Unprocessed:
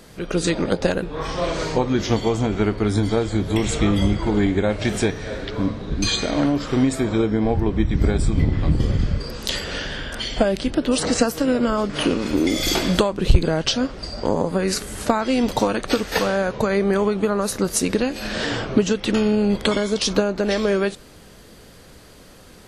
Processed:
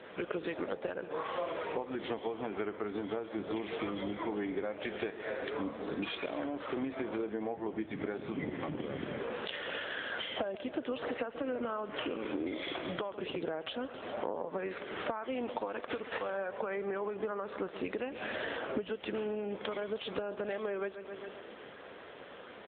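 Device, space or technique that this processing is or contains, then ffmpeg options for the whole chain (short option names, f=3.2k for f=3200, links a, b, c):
voicemail: -filter_complex "[0:a]asplit=3[a][b][c];[a]afade=t=out:st=15.38:d=0.02[d];[b]highshelf=f=9.5k:g=-4,afade=t=in:st=15.38:d=0.02,afade=t=out:st=15.87:d=0.02[e];[c]afade=t=in:st=15.87:d=0.02[f];[d][e][f]amix=inputs=3:normalize=0,highpass=390,lowpass=3.2k,aecho=1:1:134|268|402|536|670:0.133|0.072|0.0389|0.021|0.0113,acompressor=threshold=-36dB:ratio=8,volume=3dB" -ar 8000 -c:a libopencore_amrnb -b:a 7950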